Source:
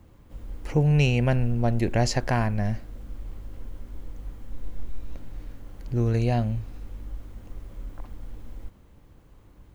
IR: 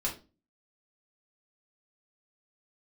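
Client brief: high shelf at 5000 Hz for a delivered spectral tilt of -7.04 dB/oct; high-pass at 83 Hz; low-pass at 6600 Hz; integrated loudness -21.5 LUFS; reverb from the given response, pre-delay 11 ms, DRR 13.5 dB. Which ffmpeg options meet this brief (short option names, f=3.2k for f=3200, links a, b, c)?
-filter_complex "[0:a]highpass=83,lowpass=6.6k,highshelf=f=5k:g=-5,asplit=2[a][b];[1:a]atrim=start_sample=2205,adelay=11[c];[b][c]afir=irnorm=-1:irlink=0,volume=-18dB[d];[a][d]amix=inputs=2:normalize=0,volume=3.5dB"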